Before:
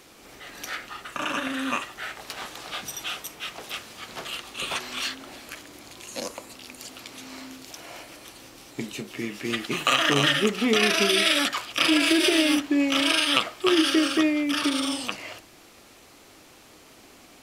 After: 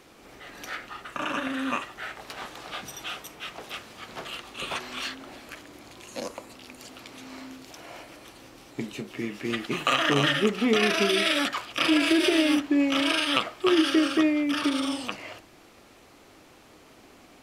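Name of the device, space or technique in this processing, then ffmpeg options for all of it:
behind a face mask: -af "highshelf=f=3.2k:g=-8"

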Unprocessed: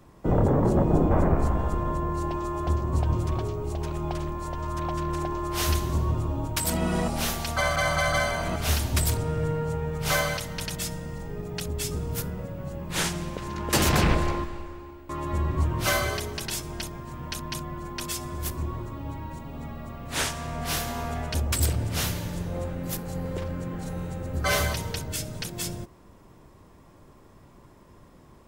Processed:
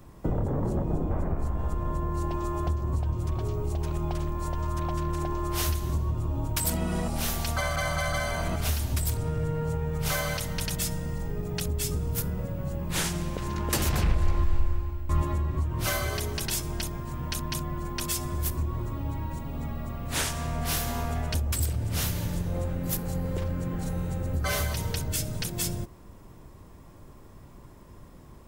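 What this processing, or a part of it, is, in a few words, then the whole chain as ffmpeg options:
ASMR close-microphone chain: -filter_complex "[0:a]lowshelf=f=130:g=7.5,acompressor=threshold=-25dB:ratio=5,highshelf=f=9.4k:g=7.5,asettb=1/sr,asplit=3[a][b][c];[a]atrim=end=13.714[d];[b]atrim=start=13.71:end=15.22,asetpts=PTS-STARTPTS,afade=t=in:d=0.004:c=qsin,afade=t=out:st=1.506:d=0.004:c=qsin,asubboost=boost=9.5:cutoff=130[e];[c]atrim=start=15.216[f];[d][e]acrossfade=d=0.004:c1=hsin:c2=qsin[g];[g][f]acrossfade=d=0.004:c1=qsin:c2=hsin"

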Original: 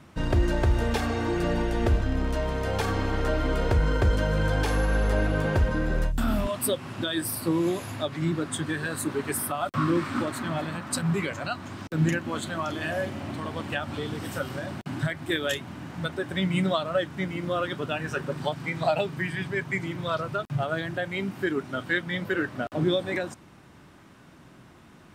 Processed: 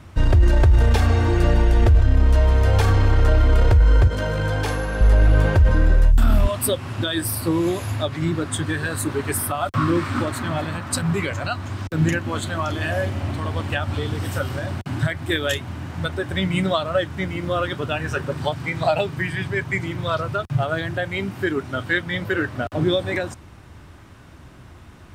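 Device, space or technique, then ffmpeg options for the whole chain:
car stereo with a boomy subwoofer: -filter_complex "[0:a]lowshelf=f=120:t=q:w=1.5:g=9.5,alimiter=limit=-13dB:level=0:latency=1:release=13,asettb=1/sr,asplit=3[a][b][c];[a]atrim=end=4.074[d];[b]atrim=start=4.07:end=5.01,asetpts=PTS-STARTPTS,afade=t=in:d=0.004:c=qsin,afade=t=out:st=0.936:d=0.004:c=qsin,highpass=120[e];[c]atrim=start=5.006[f];[d][e]acrossfade=d=0.004:c1=hsin:c2=qsin[g];[g][f]acrossfade=d=0.004:c1=qsin:c2=hsin,volume=5dB"

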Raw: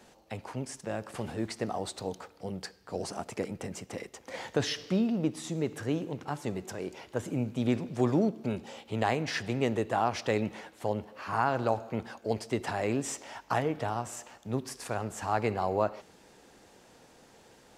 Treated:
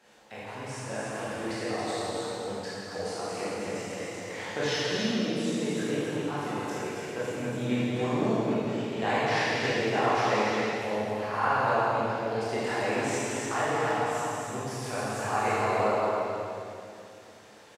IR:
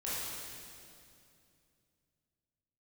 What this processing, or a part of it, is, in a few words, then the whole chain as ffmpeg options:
stadium PA: -filter_complex "[0:a]highpass=f=150:p=1,equalizer=f=2k:t=o:w=2.9:g=6.5,aecho=1:1:166.2|274.1:0.355|0.562[a];[1:a]atrim=start_sample=2205[b];[a][b]afir=irnorm=-1:irlink=0,volume=-4.5dB"

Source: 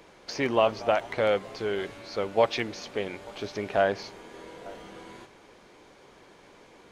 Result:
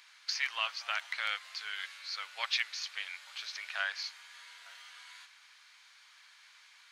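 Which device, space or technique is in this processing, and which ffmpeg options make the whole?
headphones lying on a table: -af "highpass=f=1.4k:w=0.5412,highpass=f=1.4k:w=1.3066,equalizer=f=4.3k:t=o:w=0.52:g=5"

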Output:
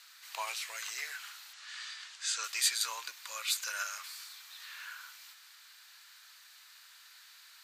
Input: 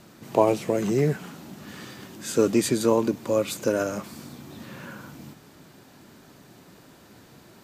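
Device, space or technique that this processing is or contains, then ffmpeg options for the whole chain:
headphones lying on a table: -filter_complex "[0:a]asettb=1/sr,asplit=3[a][b][c];[a]atrim=end=1.534[d];[b]atrim=start=1.53:end=2.44,asetpts=PTS-STARTPTS,afade=t=in:d=0.004:c=qsin,afade=t=out:st=0.906:d=0.004:c=qsin,lowpass=f=8.4k:w=0.5412,lowpass=f=8.4k:w=1.3066[e];[c]atrim=start=2.436[f];[d][e]acrossfade=d=0.004:c1=hsin:c2=qsin[g];[g][f]acrossfade=d=0.004:c1=qsin:c2=hsin,highpass=f=1.4k:w=0.5412,highpass=f=1.4k:w=1.3066,equalizer=f=4.2k:t=o:w=0.48:g=5.5"

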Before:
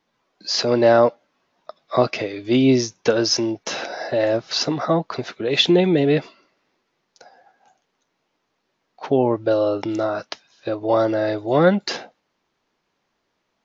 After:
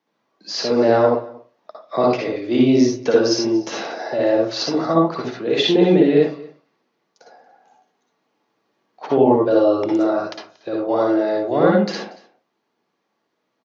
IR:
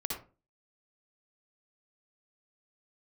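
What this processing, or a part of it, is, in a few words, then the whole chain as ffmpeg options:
far laptop microphone: -filter_complex "[0:a]highpass=97[a];[1:a]atrim=start_sample=2205[b];[a][b]afir=irnorm=-1:irlink=0,highpass=160,dynaudnorm=f=210:g=17:m=11.5dB,equalizer=f=4.8k:w=0.32:g=-4,aecho=1:1:233:0.0794,volume=-1dB"

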